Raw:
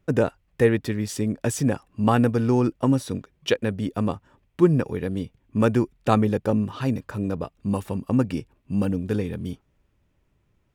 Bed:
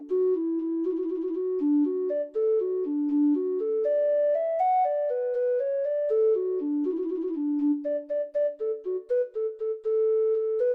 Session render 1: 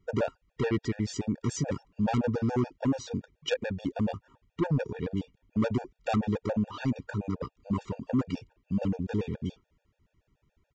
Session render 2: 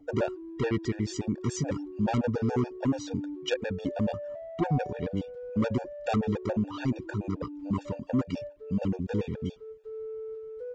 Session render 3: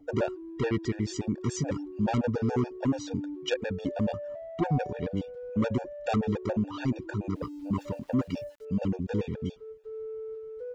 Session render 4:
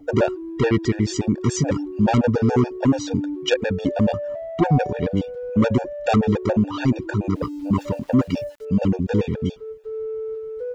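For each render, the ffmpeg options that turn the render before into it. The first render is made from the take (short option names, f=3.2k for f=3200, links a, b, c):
-af "aresample=16000,asoftclip=type=tanh:threshold=-20dB,aresample=44100,afftfilt=real='re*gt(sin(2*PI*7*pts/sr)*(1-2*mod(floor(b*sr/1024/470),2)),0)':imag='im*gt(sin(2*PI*7*pts/sr)*(1-2*mod(floor(b*sr/1024/470),2)),0)':win_size=1024:overlap=0.75"
-filter_complex "[1:a]volume=-14.5dB[a];[0:a][a]amix=inputs=2:normalize=0"
-filter_complex "[0:a]asettb=1/sr,asplit=3[a][b][c];[a]atrim=end=5.534[d];[b]atrim=start=5.53:end=6.06,asetpts=PTS-STARTPTS,afade=t=in:d=0.004:c=qsin,afade=t=out:st=0.526:d=0.004:c=qsin,bandreject=f=4.8k:w=10[e];[c]atrim=start=6.056[f];[d][e]acrossfade=d=0.004:c1=hsin:c2=qsin[g];[g][f]acrossfade=d=0.004:c1=qsin:c2=hsin,asettb=1/sr,asplit=3[h][i][j];[h]atrim=end=7.354[k];[i]atrim=start=7.35:end=8.65,asetpts=PTS-STARTPTS,afade=t=in:d=0.004:c=qsin,afade=t=out:st=1.296:d=0.004:c=qsin,aeval=exprs='val(0)*gte(abs(val(0)),0.00178)':c=same[l];[j]atrim=start=8.646[m];[k][l]acrossfade=d=0.004:c1=hsin:c2=qsin[n];[n][m]acrossfade=d=0.004:c1=qsin:c2=hsin"
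-af "volume=9.5dB"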